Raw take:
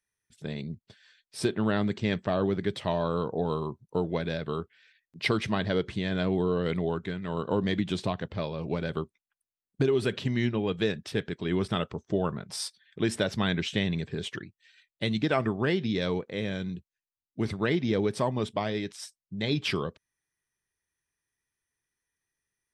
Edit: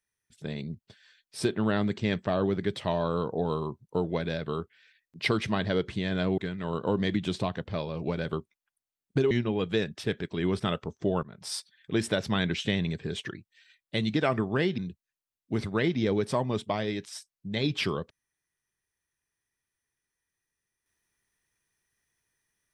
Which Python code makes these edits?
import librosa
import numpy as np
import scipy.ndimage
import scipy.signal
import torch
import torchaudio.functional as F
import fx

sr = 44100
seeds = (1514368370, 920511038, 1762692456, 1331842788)

y = fx.edit(x, sr, fx.cut(start_s=6.38, length_s=0.64),
    fx.cut(start_s=9.95, length_s=0.44),
    fx.fade_in_from(start_s=12.31, length_s=0.32, floor_db=-18.0),
    fx.cut(start_s=15.86, length_s=0.79), tone=tone)